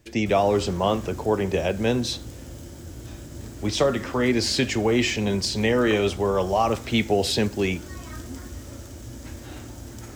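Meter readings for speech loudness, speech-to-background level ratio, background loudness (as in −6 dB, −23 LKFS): −23.5 LKFS, 15.5 dB, −39.0 LKFS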